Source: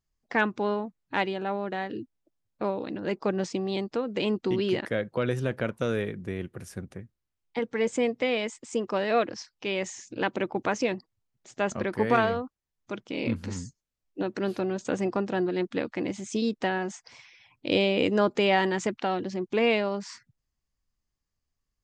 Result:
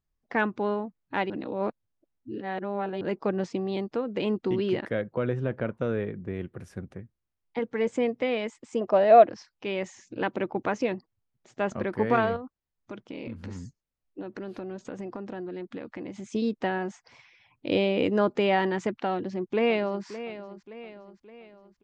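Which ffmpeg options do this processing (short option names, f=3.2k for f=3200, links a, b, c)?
-filter_complex "[0:a]asettb=1/sr,asplit=3[a][b][c];[a]atrim=end=5.024[d];[b]atrim=start=5.02:end=6.34,asetpts=PTS-STARTPTS,afade=t=in:d=0.004:c=qsin,afade=t=out:st=1.316:d=0.004:c=qsin,aemphasis=mode=reproduction:type=75kf[e];[c]atrim=start=6.336[f];[d][e]acrossfade=d=0.004:c1=hsin:c2=qsin[g];[g][f]acrossfade=d=0.004:c1=qsin:c2=hsin,asettb=1/sr,asplit=3[h][i][j];[h]atrim=end=8.814[k];[i]atrim=start=8.81:end=9.28,asetpts=PTS-STARTPTS,afade=t=in:d=0.004:c=qsin,afade=t=out:st=0.466:d=0.004:c=qsin,equalizer=f=660:w=3.2:g=15[l];[j]atrim=start=9.276[m];[k][l]acrossfade=d=0.004:c1=hsin:c2=qsin[n];[n][m]acrossfade=d=0.004:c1=qsin:c2=hsin,asettb=1/sr,asplit=3[o][p][q];[o]atrim=end=12.364[r];[p]atrim=start=12.36:end=16.35,asetpts=PTS-STARTPTS,afade=t=in:d=0.004:c=qsin,afade=t=out:st=3.986:d=0.004:c=qsin,acompressor=threshold=-33dB:ratio=6:attack=3.2:release=140:knee=1:detection=peak[s];[q]atrim=start=16.346[t];[r][s]acrossfade=d=0.004:c1=hsin:c2=qsin[u];[u][t]acrossfade=d=0.004:c1=qsin:c2=hsin,asplit=2[v][w];[w]afade=t=in:st=19.12:d=0.01,afade=t=out:st=20.05:d=0.01,aecho=0:1:570|1140|1710|2280|2850:0.223872|0.111936|0.055968|0.027984|0.013992[x];[v][x]amix=inputs=2:normalize=0,asplit=3[y][z][aa];[y]atrim=end=1.302[ab];[z]atrim=start=1.298:end=3.012,asetpts=PTS-STARTPTS,areverse[ac];[aa]atrim=start=3.008[ad];[ab][ac]acrossfade=d=0.004:c1=hsin:c2=hsin[ae];[ae][ad]acrossfade=d=0.004:c1=hsin:c2=hsin,lowpass=f=2.1k:p=1"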